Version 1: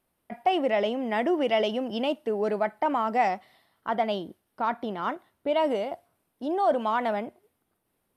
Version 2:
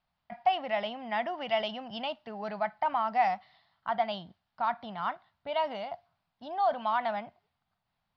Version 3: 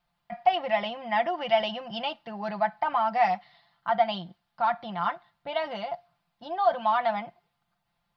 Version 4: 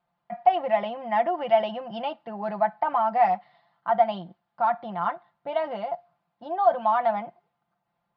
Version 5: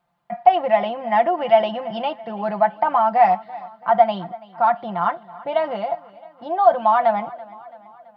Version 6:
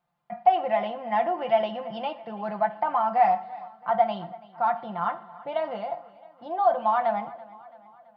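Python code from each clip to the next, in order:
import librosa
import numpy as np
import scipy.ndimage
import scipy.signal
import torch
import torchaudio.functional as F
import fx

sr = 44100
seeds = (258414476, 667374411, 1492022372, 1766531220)

y1 = fx.curve_eq(x, sr, hz=(170.0, 340.0, 490.0, 710.0, 2500.0, 4700.0, 7900.0), db=(0, -19, -15, 1, -1, 3, -27))
y1 = y1 * 10.0 ** (-2.5 / 20.0)
y2 = y1 + 0.72 * np.pad(y1, (int(5.8 * sr / 1000.0), 0))[:len(y1)]
y2 = y2 * 10.0 ** (2.5 / 20.0)
y3 = fx.bandpass_q(y2, sr, hz=470.0, q=0.55)
y3 = y3 * 10.0 ** (4.0 / 20.0)
y4 = fx.echo_feedback(y3, sr, ms=333, feedback_pct=54, wet_db=-20)
y4 = y4 * 10.0 ** (6.0 / 20.0)
y5 = fx.rev_fdn(y4, sr, rt60_s=0.68, lf_ratio=0.85, hf_ratio=0.75, size_ms=39.0, drr_db=9.5)
y5 = y5 * 10.0 ** (-7.0 / 20.0)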